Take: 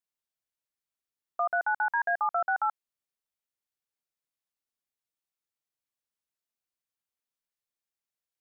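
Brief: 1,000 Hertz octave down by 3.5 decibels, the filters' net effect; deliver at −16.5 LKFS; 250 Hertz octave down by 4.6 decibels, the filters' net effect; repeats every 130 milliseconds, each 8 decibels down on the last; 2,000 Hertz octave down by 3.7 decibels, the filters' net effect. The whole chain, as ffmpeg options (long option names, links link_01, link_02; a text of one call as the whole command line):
ffmpeg -i in.wav -af "equalizer=frequency=250:width_type=o:gain=-7,equalizer=frequency=1000:width_type=o:gain=-3.5,equalizer=frequency=2000:width_type=o:gain=-3.5,aecho=1:1:130|260|390|520|650:0.398|0.159|0.0637|0.0255|0.0102,volume=15dB" out.wav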